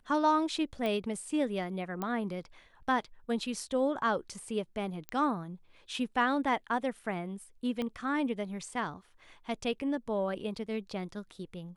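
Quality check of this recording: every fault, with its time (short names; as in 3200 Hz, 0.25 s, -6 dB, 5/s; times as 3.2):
0.86 pop -22 dBFS
2.02 pop -21 dBFS
5.09 pop -22 dBFS
7.82 pop -23 dBFS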